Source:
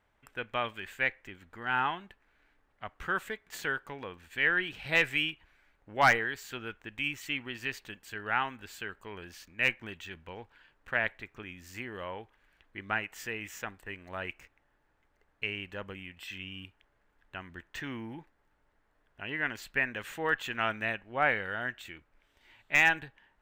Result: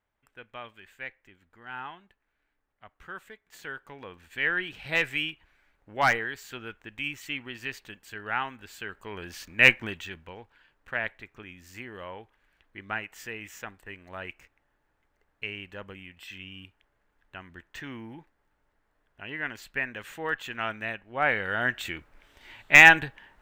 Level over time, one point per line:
0:03.42 −9.5 dB
0:04.20 0 dB
0:08.71 0 dB
0:09.69 +11 dB
0:10.41 −1 dB
0:21.07 −1 dB
0:21.82 +11 dB

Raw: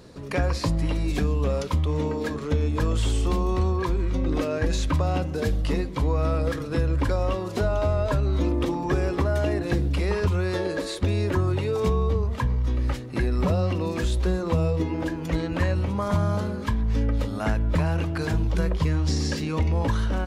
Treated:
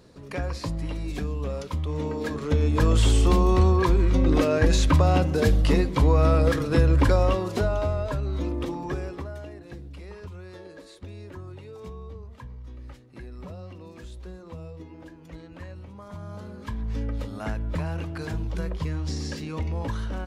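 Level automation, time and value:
0:01.70 −6 dB
0:02.96 +4.5 dB
0:07.16 +4.5 dB
0:08.11 −5 dB
0:08.84 −5 dB
0:09.54 −17 dB
0:16.13 −17 dB
0:16.83 −6 dB

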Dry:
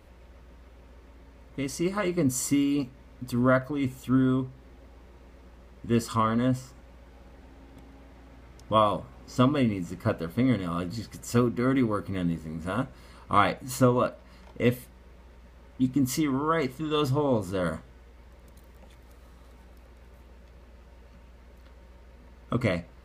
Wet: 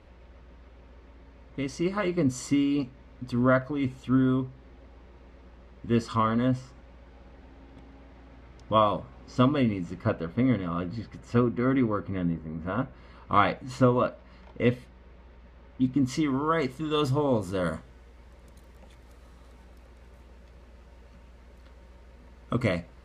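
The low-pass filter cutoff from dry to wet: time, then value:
0:09.87 4,900 Hz
0:10.37 2,800 Hz
0:11.98 2,800 Hz
0:12.43 1,700 Hz
0:13.32 4,100 Hz
0:15.97 4,100 Hz
0:16.83 11,000 Hz

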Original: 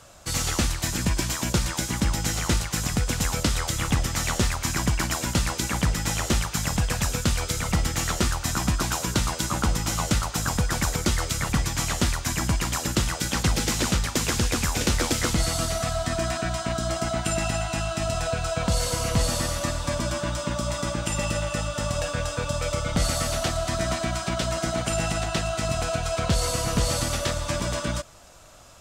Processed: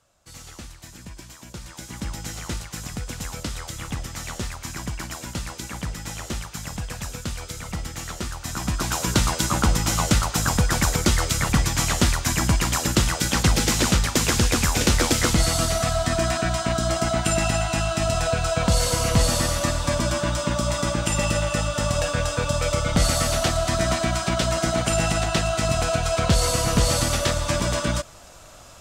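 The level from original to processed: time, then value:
0:01.47 −16 dB
0:02.05 −7 dB
0:08.29 −7 dB
0:09.13 +4 dB

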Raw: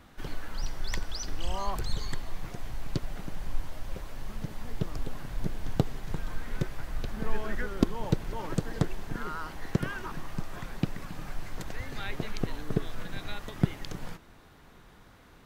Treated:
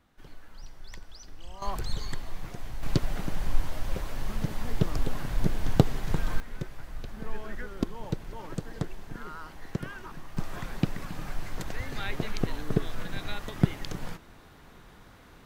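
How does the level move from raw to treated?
−12 dB
from 0:01.62 −0.5 dB
from 0:02.83 +6 dB
from 0:06.40 −5 dB
from 0:10.37 +2.5 dB

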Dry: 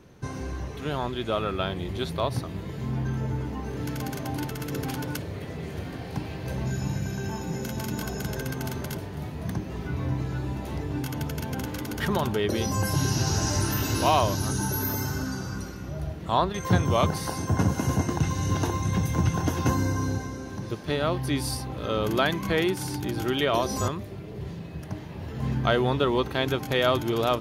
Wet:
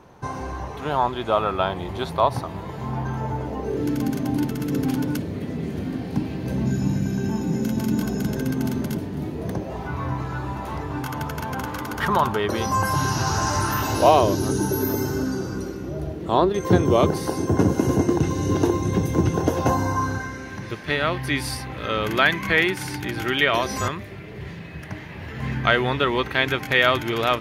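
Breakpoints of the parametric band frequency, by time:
parametric band +13 dB 1.2 octaves
0:03.27 890 Hz
0:04.09 240 Hz
0:09.15 240 Hz
0:09.98 1,100 Hz
0:13.79 1,100 Hz
0:14.23 370 Hz
0:19.31 370 Hz
0:20.41 2,000 Hz

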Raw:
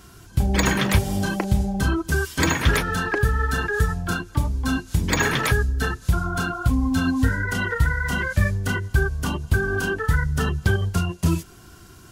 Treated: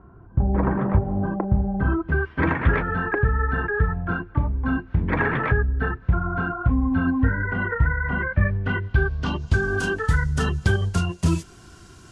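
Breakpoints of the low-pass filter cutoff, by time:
low-pass filter 24 dB per octave
0:01.44 1,200 Hz
0:02.05 2,000 Hz
0:08.35 2,000 Hz
0:09.26 4,500 Hz
0:09.72 9,400 Hz

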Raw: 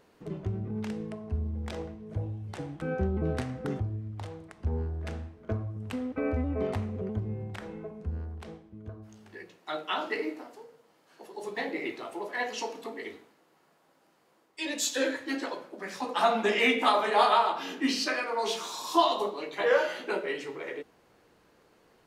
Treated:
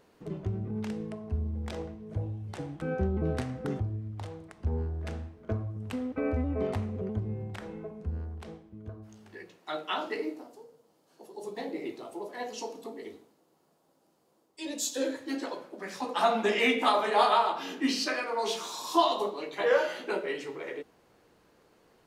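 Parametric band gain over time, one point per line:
parametric band 1,900 Hz 1.8 octaves
0:09.94 −1.5 dB
0:10.48 −12 dB
0:15.00 −12 dB
0:15.66 −2 dB

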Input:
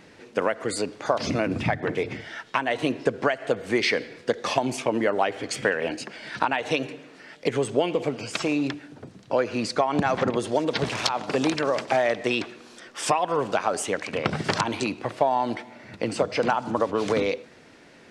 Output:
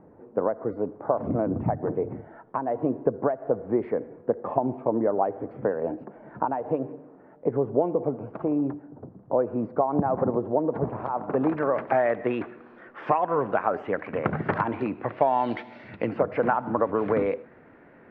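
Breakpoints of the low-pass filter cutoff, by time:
low-pass filter 24 dB per octave
0:10.93 1,000 Hz
0:11.82 1,800 Hz
0:14.92 1,800 Hz
0:15.77 4,300 Hz
0:16.16 1,800 Hz

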